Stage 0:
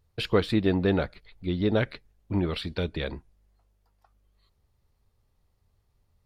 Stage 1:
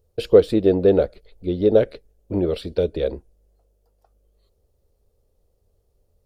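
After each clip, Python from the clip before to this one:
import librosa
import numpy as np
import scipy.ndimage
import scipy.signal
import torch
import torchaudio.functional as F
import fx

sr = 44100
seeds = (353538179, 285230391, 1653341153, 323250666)

y = fx.graphic_eq_10(x, sr, hz=(125, 250, 500, 1000, 2000, 4000), db=(-7, -3, 12, -10, -10, -5))
y = y * 10.0 ** (5.0 / 20.0)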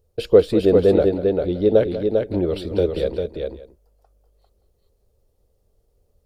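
y = fx.echo_multitap(x, sr, ms=(193, 398, 572), db=(-13.0, -4.5, -19.5))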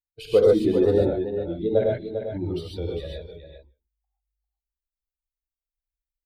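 y = fx.bin_expand(x, sr, power=2.0)
y = fx.wow_flutter(y, sr, seeds[0], rate_hz=2.1, depth_cents=59.0)
y = fx.rev_gated(y, sr, seeds[1], gate_ms=160, shape='rising', drr_db=-2.5)
y = y * 10.0 ** (-4.5 / 20.0)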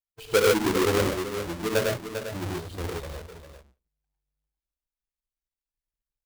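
y = fx.halfwave_hold(x, sr)
y = y * 10.0 ** (-7.0 / 20.0)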